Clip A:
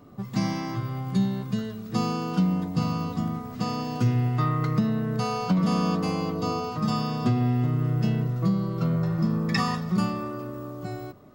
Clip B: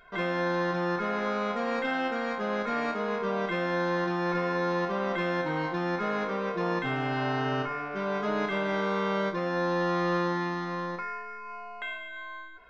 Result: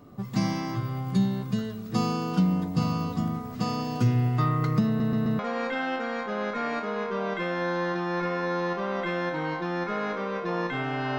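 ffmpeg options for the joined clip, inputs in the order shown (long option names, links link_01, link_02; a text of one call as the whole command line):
ffmpeg -i cue0.wav -i cue1.wav -filter_complex "[0:a]apad=whole_dur=11.18,atrim=end=11.18,asplit=4[link_01][link_02][link_03][link_04];[link_01]atrim=end=5.002[link_05];[link_02]atrim=start=4.868:end=5.002[link_06];[link_03]atrim=start=4.868:end=5.002[link_07];[link_04]atrim=start=4.868:end=5.002[link_08];[1:a]atrim=start=1.508:end=7.3[link_09];[link_05][link_06]acrossfade=duration=0.004:curve1=hsin:curve2=hsin[link_10];[link_10][link_07]acrossfade=duration=0.004:curve1=hsin:curve2=hsin[link_11];[link_11][link_08]acrossfade=duration=0.004:curve1=hsin:curve2=hsin[link_12];[link_12][link_09]acrossfade=duration=0.004:curve1=hsin:curve2=hsin" out.wav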